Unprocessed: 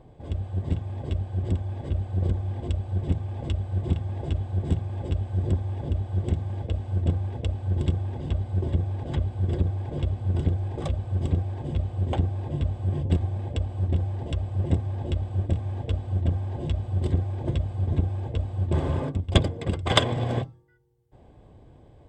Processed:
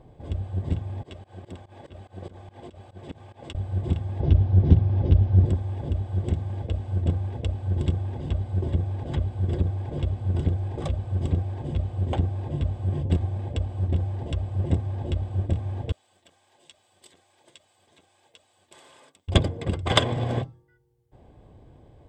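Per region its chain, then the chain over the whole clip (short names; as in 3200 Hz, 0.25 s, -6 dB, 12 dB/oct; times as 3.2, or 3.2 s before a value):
1.03–3.55 HPF 590 Hz 6 dB/oct + pump 144 bpm, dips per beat 2, -23 dB, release 0.127 s
4.2–5.46 brick-wall FIR low-pass 6300 Hz + low shelf 430 Hz +9.5 dB + Doppler distortion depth 0.12 ms
15.92–19.28 HPF 340 Hz 6 dB/oct + differentiator
whole clip: dry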